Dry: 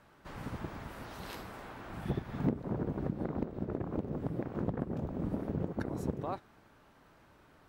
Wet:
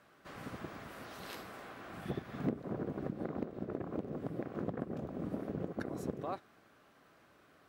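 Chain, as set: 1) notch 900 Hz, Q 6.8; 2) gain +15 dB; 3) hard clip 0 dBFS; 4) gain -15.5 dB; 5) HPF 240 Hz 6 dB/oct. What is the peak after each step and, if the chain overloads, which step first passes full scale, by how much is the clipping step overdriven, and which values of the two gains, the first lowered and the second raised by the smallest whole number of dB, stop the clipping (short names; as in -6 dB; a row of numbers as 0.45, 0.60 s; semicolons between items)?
-19.0, -4.0, -4.0, -19.5, -19.5 dBFS; no overload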